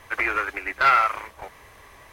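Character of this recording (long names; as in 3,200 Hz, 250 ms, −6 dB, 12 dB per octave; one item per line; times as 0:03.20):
background noise floor −50 dBFS
spectral slope 0.0 dB per octave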